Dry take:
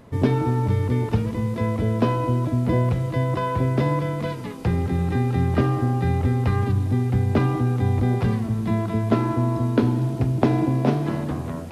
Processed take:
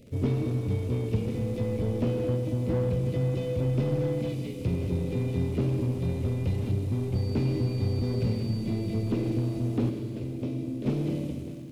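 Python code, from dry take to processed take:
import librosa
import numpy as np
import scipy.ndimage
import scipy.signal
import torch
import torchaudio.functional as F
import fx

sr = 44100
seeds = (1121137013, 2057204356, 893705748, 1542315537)

p1 = fx.fade_out_tail(x, sr, length_s=0.61)
p2 = scipy.signal.sosfilt(scipy.signal.ellip(3, 1.0, 40, [560.0, 2300.0], 'bandstop', fs=sr, output='sos'), p1)
p3 = fx.dmg_crackle(p2, sr, seeds[0], per_s=74.0, level_db=-35.0)
p4 = fx.comb_fb(p3, sr, f0_hz=86.0, decay_s=0.87, harmonics='all', damping=0.0, mix_pct=80, at=(9.89, 10.86))
p5 = 10.0 ** (-25.0 / 20.0) * (np.abs((p4 / 10.0 ** (-25.0 / 20.0) + 3.0) % 4.0 - 2.0) - 1.0)
p6 = p4 + (p5 * 10.0 ** (-9.5 / 20.0))
p7 = fx.dmg_tone(p6, sr, hz=4600.0, level_db=-42.0, at=(7.14, 8.5), fade=0.02)
p8 = p7 + fx.echo_single(p7, sr, ms=1044, db=-12.5, dry=0)
p9 = fx.rev_schroeder(p8, sr, rt60_s=2.3, comb_ms=30, drr_db=6.5)
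p10 = fx.slew_limit(p9, sr, full_power_hz=49.0)
y = p10 * 10.0 ** (-6.0 / 20.0)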